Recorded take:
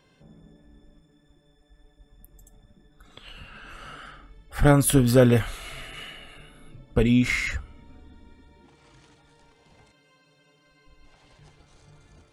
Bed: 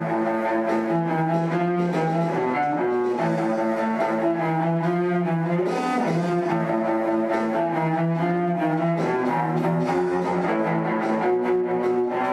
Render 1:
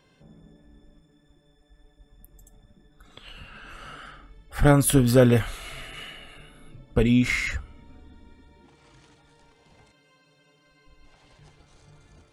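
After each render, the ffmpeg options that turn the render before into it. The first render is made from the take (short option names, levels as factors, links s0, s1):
-af anull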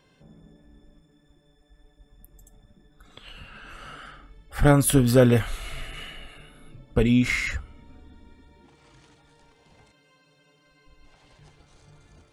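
-filter_complex "[0:a]asettb=1/sr,asplit=3[s0][s1][s2];[s0]atrim=end=5.504[s3];[s1]atrim=start=5.5:end=6.27,asetpts=PTS-STARTPTS,afade=t=in:d=0.004:c=qsin,afade=t=out:st=0.766:d=0.004:c=qsin,lowshelf=f=90:g=9.5[s4];[s2]atrim=start=6.266[s5];[s3][s4]acrossfade=d=0.004:c1=hsin:c2=qsin[s6];[s6][s5]acrossfade=d=0.004:c1=qsin:c2=hsin"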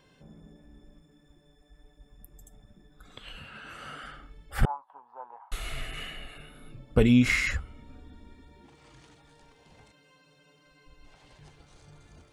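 -filter_complex "[0:a]asettb=1/sr,asplit=3[s0][s1][s2];[s0]atrim=end=3.384[s3];[s1]atrim=start=3.38:end=4.04,asetpts=PTS-STARTPTS,afade=t=in:d=0.004:c=qsin,afade=t=out:st=0.656:d=0.004:c=qsin,highpass=83[s4];[s2]atrim=start=4.036[s5];[s3][s4]acrossfade=d=0.004:c1=hsin:c2=qsin[s6];[s6][s5]acrossfade=d=0.004:c1=qsin:c2=hsin,asettb=1/sr,asplit=3[s7][s8][s9];[s7]atrim=end=4.654[s10];[s8]atrim=start=4.65:end=5.52,asetpts=PTS-STARTPTS,afade=t=in:d=0.004:c=qsin,afade=t=out:st=0.866:d=0.004:c=qsin,asuperpass=centerf=910:order=4:qfactor=5.6[s11];[s9]atrim=start=5.516[s12];[s10][s11]acrossfade=d=0.004:c1=hsin:c2=qsin[s13];[s13][s12]acrossfade=d=0.004:c1=qsin:c2=hsin"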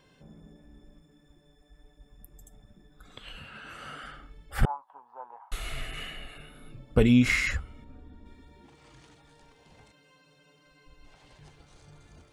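-filter_complex "[0:a]asettb=1/sr,asplit=3[s0][s1][s2];[s0]atrim=end=7.844[s3];[s1]atrim=start=7.84:end=8.26,asetpts=PTS-STARTPTS,afade=t=in:d=0.004:c=qsin,afade=t=out:st=0.416:d=0.004:c=qsin,highshelf=f=2300:g=-10.5[s4];[s2]atrim=start=8.256[s5];[s3][s4]acrossfade=d=0.004:c1=hsin:c2=qsin[s6];[s6][s5]acrossfade=d=0.004:c1=qsin:c2=hsin"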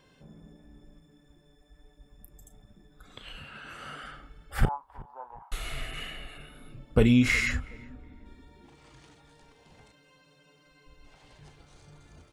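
-filter_complex "[0:a]asplit=2[s0][s1];[s1]adelay=35,volume=0.224[s2];[s0][s2]amix=inputs=2:normalize=0,asplit=2[s3][s4];[s4]adelay=369,lowpass=f=1400:p=1,volume=0.0841,asplit=2[s5][s6];[s6]adelay=369,lowpass=f=1400:p=1,volume=0.33[s7];[s3][s5][s7]amix=inputs=3:normalize=0"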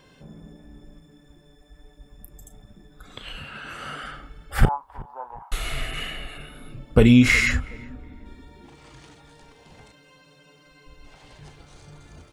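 -af "volume=2.24,alimiter=limit=0.708:level=0:latency=1"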